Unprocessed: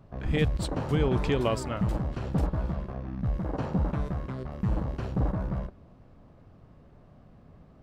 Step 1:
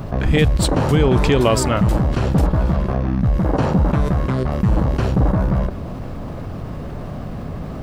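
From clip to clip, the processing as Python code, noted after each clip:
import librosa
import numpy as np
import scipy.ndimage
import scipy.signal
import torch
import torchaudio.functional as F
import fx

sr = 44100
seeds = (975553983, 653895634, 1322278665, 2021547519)

y = fx.high_shelf(x, sr, hz=7100.0, db=6.5)
y = fx.env_flatten(y, sr, amount_pct=50)
y = y * 10.0 ** (9.0 / 20.0)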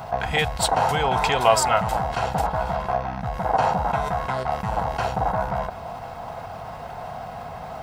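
y = fx.low_shelf_res(x, sr, hz=480.0, db=-12.5, q=3.0)
y = fx.notch_comb(y, sr, f0_hz=590.0)
y = y * 10.0 ** (1.0 / 20.0)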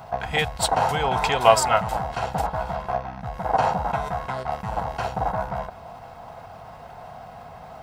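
y = fx.upward_expand(x, sr, threshold_db=-31.0, expansion=1.5)
y = y * 10.0 ** (3.0 / 20.0)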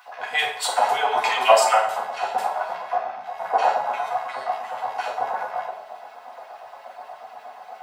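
y = fx.filter_lfo_highpass(x, sr, shape='sine', hz=8.4, low_hz=480.0, high_hz=2700.0, q=1.9)
y = fx.rev_fdn(y, sr, rt60_s=0.64, lf_ratio=0.9, hf_ratio=0.8, size_ms=24.0, drr_db=-3.0)
y = y * 10.0 ** (-5.0 / 20.0)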